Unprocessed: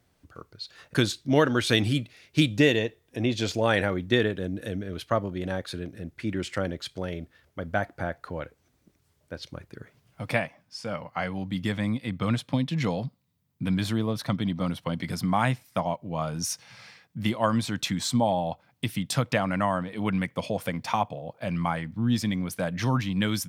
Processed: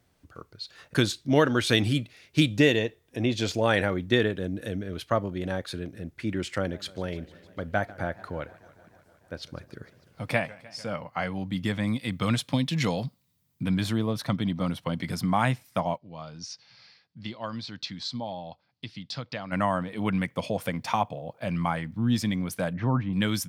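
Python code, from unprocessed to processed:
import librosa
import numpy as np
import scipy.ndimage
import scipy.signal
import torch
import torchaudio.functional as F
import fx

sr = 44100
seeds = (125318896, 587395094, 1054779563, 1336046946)

y = fx.echo_warbled(x, sr, ms=150, feedback_pct=77, rate_hz=2.8, cents=173, wet_db=-21, at=(6.58, 10.88))
y = fx.high_shelf(y, sr, hz=2700.0, db=8.5, at=(11.87, 13.63))
y = fx.ladder_lowpass(y, sr, hz=5100.0, resonance_pct=65, at=(15.97, 19.51), fade=0.02)
y = fx.lowpass(y, sr, hz=1300.0, slope=12, at=(22.73, 23.13))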